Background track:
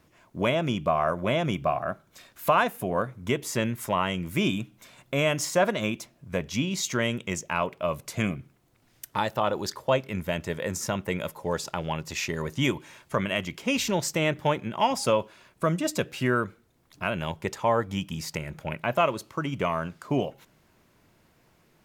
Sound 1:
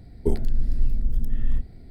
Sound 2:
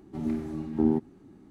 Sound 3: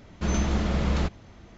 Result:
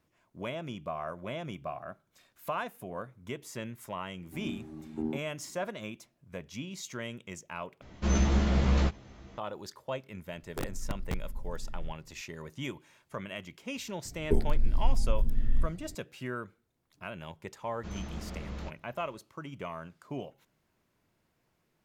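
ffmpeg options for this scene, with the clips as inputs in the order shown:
-filter_complex "[3:a]asplit=2[a][b];[1:a]asplit=2[c][d];[0:a]volume=-12.5dB[e];[a]asplit=2[f][g];[g]adelay=15,volume=-3.5dB[h];[f][h]amix=inputs=2:normalize=0[i];[c]aeval=exprs='(mod(3.76*val(0)+1,2)-1)/3.76':c=same[j];[e]asplit=2[k][l];[k]atrim=end=7.814[m];[i]atrim=end=1.57,asetpts=PTS-STARTPTS,volume=-3.5dB[n];[l]atrim=start=9.376[o];[2:a]atrim=end=1.5,asetpts=PTS-STARTPTS,volume=-10.5dB,afade=t=in:d=0.004:c=hsin,afade=t=out:st=1.496:d=0.004:c=hsin,adelay=4190[p];[j]atrim=end=1.9,asetpts=PTS-STARTPTS,volume=-16dB,afade=t=in:d=0.004:c=hsin,afade=t=out:st=1.896:d=0.004:c=hsin,adelay=10310[q];[d]atrim=end=1.9,asetpts=PTS-STARTPTS,volume=-3.5dB,afade=t=in:d=0.004:c=hsin,afade=t=out:st=1.896:d=0.004:c=hsin,adelay=14050[r];[b]atrim=end=1.57,asetpts=PTS-STARTPTS,volume=-15dB,afade=t=in:d=0.004:c=hsin,afade=t=out:st=1.566:d=0.004:c=hsin,adelay=17620[s];[m][n]acrossfade=d=0.004:c1=hsin:c2=hsin[t];[t][o]acrossfade=d=0.004:c1=hsin:c2=hsin[u];[u][p][q][r][s]amix=inputs=5:normalize=0"

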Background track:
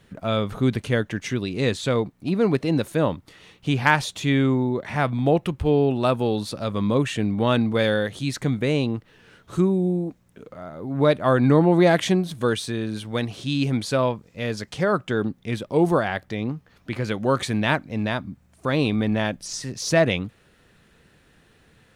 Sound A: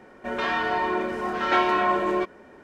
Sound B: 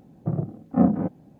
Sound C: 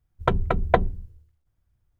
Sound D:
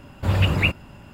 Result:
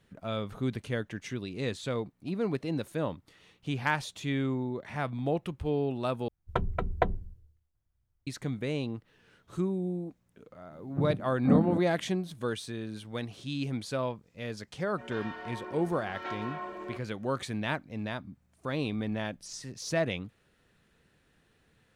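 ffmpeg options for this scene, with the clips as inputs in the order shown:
-filter_complex "[0:a]volume=-10.5dB[a];[2:a]equalizer=f=850:w=1.5:g=-6[b];[a]asplit=2[c][d];[c]atrim=end=6.284[e];[3:a]atrim=end=1.99,asetpts=PTS-STARTPTS,volume=-8dB[f];[d]atrim=start=8.266[g];[b]atrim=end=1.39,asetpts=PTS-STARTPTS,volume=-5dB,afade=t=in:d=0.004:c=hsin,afade=t=out:st=1.386:d=0.004:c=hsin,adelay=10710[h];[1:a]atrim=end=2.63,asetpts=PTS-STARTPTS,volume=-17dB,afade=t=in:d=0.004:c=hsin,afade=t=out:st=2.626:d=0.004:c=hsin,adelay=14730[i];[e][f]acrossfade=d=0.004:c1=hsin:c2=hsin[j];[j][g]acrossfade=d=0.004:c1=hsin:c2=hsin[k];[k][h][i]amix=inputs=3:normalize=0"

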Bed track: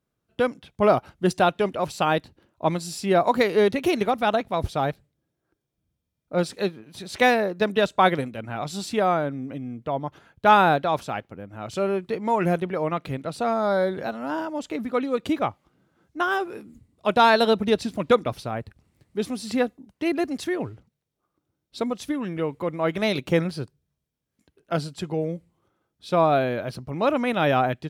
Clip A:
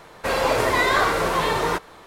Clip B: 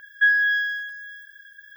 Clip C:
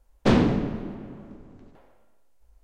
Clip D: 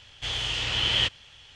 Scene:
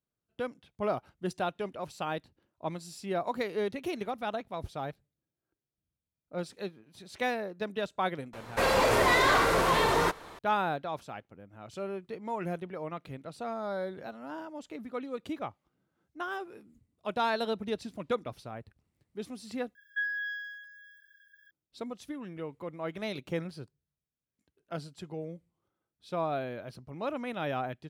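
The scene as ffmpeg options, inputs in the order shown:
-filter_complex "[0:a]volume=-12.5dB[a];[1:a]aeval=exprs='0.473*sin(PI/2*2*val(0)/0.473)':c=same[b];[a]asplit=2[c][d];[c]atrim=end=19.754[e];[2:a]atrim=end=1.76,asetpts=PTS-STARTPTS,volume=-14.5dB[f];[d]atrim=start=21.506[g];[b]atrim=end=2.06,asetpts=PTS-STARTPTS,volume=-12dB,afade=t=in:d=0.004:c=hsin,afade=t=out:st=2.056:d=0.004:c=hsin,adelay=8330[h];[e][f]acrossfade=d=0.004:c1=hsin:c2=hsin[i];[i][g]acrossfade=d=0.004:c1=hsin:c2=hsin[j];[j][h]amix=inputs=2:normalize=0"

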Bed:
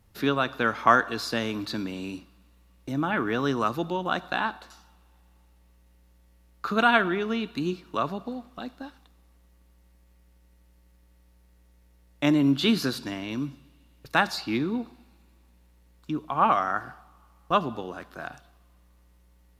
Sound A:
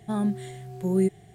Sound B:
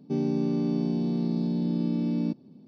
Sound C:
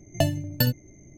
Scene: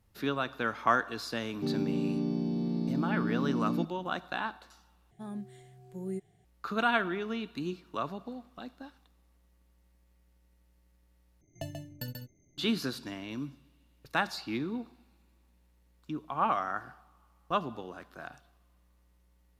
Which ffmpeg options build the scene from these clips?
-filter_complex "[0:a]volume=-7dB[a];[3:a]aecho=1:1:136:0.562[b];[a]asplit=3[c][d][e];[c]atrim=end=5.114[f];[1:a]atrim=end=1.34,asetpts=PTS-STARTPTS,volume=-14.5dB[g];[d]atrim=start=6.446:end=11.414[h];[b]atrim=end=1.17,asetpts=PTS-STARTPTS,volume=-17.5dB[i];[e]atrim=start=12.576[j];[2:a]atrim=end=2.67,asetpts=PTS-STARTPTS,volume=-4.5dB,afade=t=in:d=0.004:c=hsin,afade=t=out:st=2.666:d=0.004:c=hsin,adelay=1520[k];[f][g]acrossfade=d=0.004:c1=hsin:c2=hsin[l];[l][h]acrossfade=d=0.004:c1=hsin:c2=hsin[m];[m][i]acrossfade=d=0.004:c1=hsin:c2=hsin[n];[n][j]acrossfade=d=0.004:c1=hsin:c2=hsin[o];[o][k]amix=inputs=2:normalize=0"

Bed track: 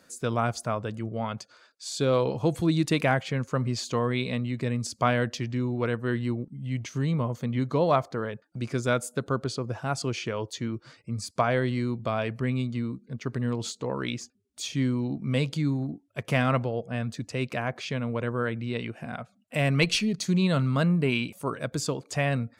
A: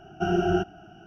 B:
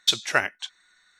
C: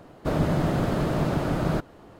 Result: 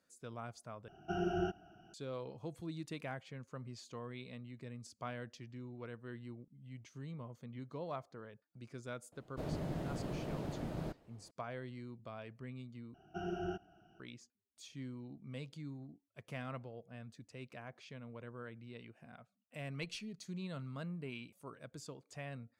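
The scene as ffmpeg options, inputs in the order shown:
-filter_complex "[1:a]asplit=2[a][b];[0:a]volume=-20dB[c];[3:a]equalizer=f=1.3k:t=o:w=0.74:g=-6[d];[c]asplit=3[e][f][g];[e]atrim=end=0.884[h];[a]atrim=end=1.06,asetpts=PTS-STARTPTS,volume=-12dB[i];[f]atrim=start=1.936:end=12.944[j];[b]atrim=end=1.06,asetpts=PTS-STARTPTS,volume=-16.5dB[k];[g]atrim=start=13.996[l];[d]atrim=end=2.19,asetpts=PTS-STARTPTS,volume=-16dB,afade=t=in:d=0.004:c=hsin,afade=t=out:st=2.186:d=0.004:c=hsin,adelay=9120[m];[h][i]acrossfade=d=0.004:c1=hsin:c2=hsin[n];[n][j]acrossfade=d=0.004:c1=hsin:c2=hsin[o];[o][k]acrossfade=d=0.004:c1=hsin:c2=hsin[p];[p][l]acrossfade=d=0.004:c1=hsin:c2=hsin[q];[q][m]amix=inputs=2:normalize=0"

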